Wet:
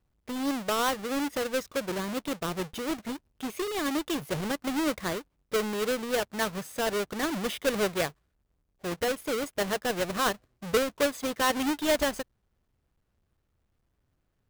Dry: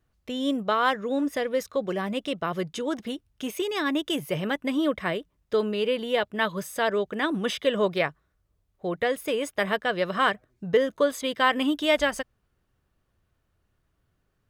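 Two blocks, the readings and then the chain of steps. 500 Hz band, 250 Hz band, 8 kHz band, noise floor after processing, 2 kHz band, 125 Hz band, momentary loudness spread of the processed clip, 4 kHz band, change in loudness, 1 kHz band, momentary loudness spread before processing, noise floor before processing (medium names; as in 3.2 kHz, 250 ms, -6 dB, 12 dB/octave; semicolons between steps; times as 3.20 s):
-4.0 dB, -3.0 dB, +6.0 dB, -76 dBFS, -4.5 dB, -2.5 dB, 7 LU, -3.0 dB, -3.5 dB, -4.0 dB, 8 LU, -74 dBFS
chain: square wave that keeps the level; trim -7.5 dB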